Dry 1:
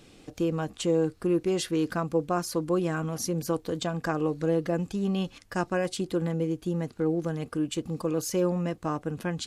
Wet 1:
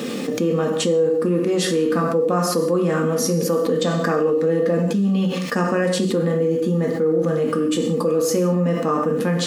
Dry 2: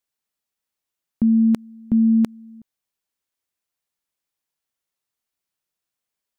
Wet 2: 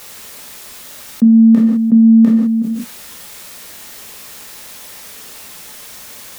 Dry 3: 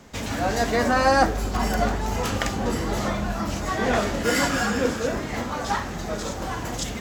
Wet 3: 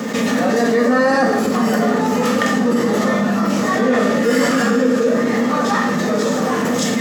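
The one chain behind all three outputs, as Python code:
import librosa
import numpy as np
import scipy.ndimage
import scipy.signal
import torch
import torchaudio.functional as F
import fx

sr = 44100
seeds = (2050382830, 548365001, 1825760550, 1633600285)

y = scipy.signal.sosfilt(scipy.signal.butter(4, 150.0, 'highpass', fs=sr, output='sos'), x)
y = fx.small_body(y, sr, hz=(240.0, 470.0, 1200.0, 1800.0), ring_ms=45, db=12)
y = fx.quant_dither(y, sr, seeds[0], bits=12, dither='triangular')
y = fx.rev_gated(y, sr, seeds[1], gate_ms=230, shape='falling', drr_db=0.5)
y = fx.env_flatten(y, sr, amount_pct=70)
y = y * 10.0 ** (-5.5 / 20.0)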